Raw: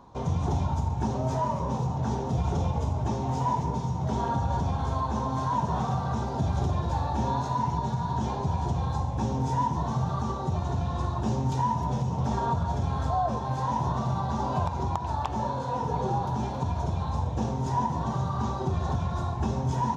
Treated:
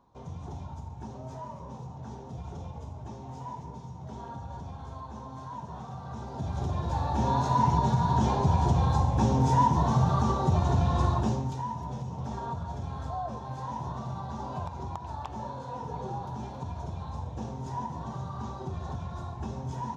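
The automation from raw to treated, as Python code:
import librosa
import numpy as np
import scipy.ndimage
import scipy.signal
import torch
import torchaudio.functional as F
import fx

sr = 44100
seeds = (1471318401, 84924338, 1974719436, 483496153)

y = fx.gain(x, sr, db=fx.line((5.9, -13.0), (6.68, -4.0), (7.64, 4.0), (11.13, 4.0), (11.58, -8.0)))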